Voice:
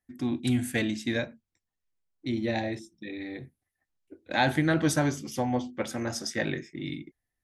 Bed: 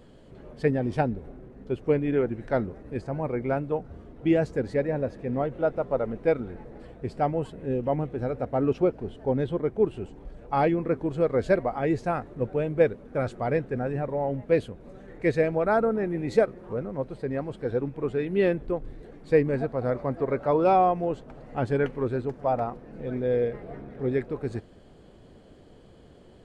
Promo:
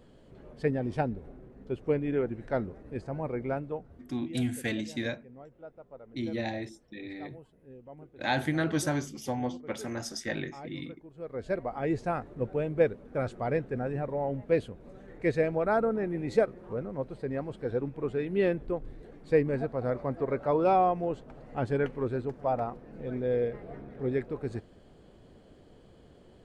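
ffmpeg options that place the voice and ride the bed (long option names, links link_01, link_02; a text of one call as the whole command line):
ffmpeg -i stem1.wav -i stem2.wav -filter_complex "[0:a]adelay=3900,volume=-4dB[link_01];[1:a]volume=14dB,afade=type=out:start_time=3.44:duration=0.83:silence=0.133352,afade=type=in:start_time=11.14:duration=0.83:silence=0.11885[link_02];[link_01][link_02]amix=inputs=2:normalize=0" out.wav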